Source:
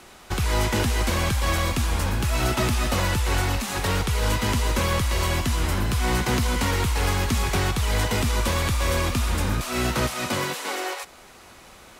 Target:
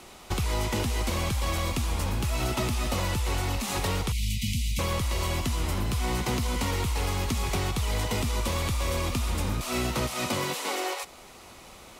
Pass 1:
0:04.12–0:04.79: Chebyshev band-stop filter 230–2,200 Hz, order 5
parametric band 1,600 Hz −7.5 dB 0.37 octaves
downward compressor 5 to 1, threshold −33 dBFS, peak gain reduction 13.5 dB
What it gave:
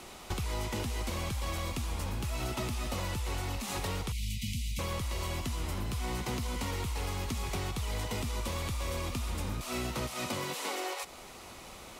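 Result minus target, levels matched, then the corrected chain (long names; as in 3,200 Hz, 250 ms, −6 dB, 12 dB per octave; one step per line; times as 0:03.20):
downward compressor: peak gain reduction +7 dB
0:04.12–0:04.79: Chebyshev band-stop filter 230–2,200 Hz, order 5
parametric band 1,600 Hz −7.5 dB 0.37 octaves
downward compressor 5 to 1, threshold −24.5 dBFS, peak gain reduction 6.5 dB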